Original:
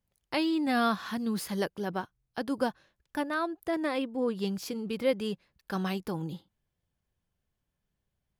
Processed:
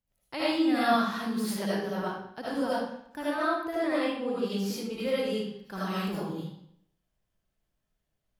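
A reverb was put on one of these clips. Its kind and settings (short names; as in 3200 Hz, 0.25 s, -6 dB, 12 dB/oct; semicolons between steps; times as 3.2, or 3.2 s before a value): digital reverb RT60 0.7 s, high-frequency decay 0.9×, pre-delay 35 ms, DRR -9 dB; gain -7 dB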